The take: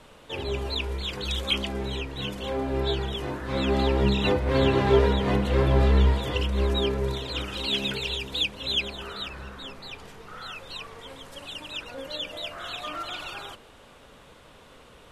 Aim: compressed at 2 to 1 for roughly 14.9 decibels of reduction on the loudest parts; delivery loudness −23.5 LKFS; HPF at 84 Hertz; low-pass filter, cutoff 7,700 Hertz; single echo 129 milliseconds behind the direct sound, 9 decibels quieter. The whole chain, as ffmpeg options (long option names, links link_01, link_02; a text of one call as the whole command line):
ffmpeg -i in.wav -af "highpass=84,lowpass=7700,acompressor=threshold=-43dB:ratio=2,aecho=1:1:129:0.355,volume=14.5dB" out.wav